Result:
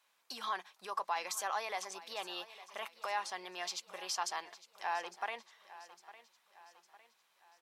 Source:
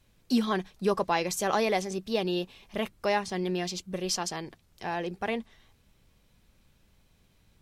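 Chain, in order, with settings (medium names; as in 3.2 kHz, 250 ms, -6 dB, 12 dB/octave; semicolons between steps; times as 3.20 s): peak limiter -23.5 dBFS, peak gain reduction 10 dB; resonant high-pass 960 Hz, resonance Q 1.9; feedback delay 856 ms, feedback 47%, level -17 dB; trim -4 dB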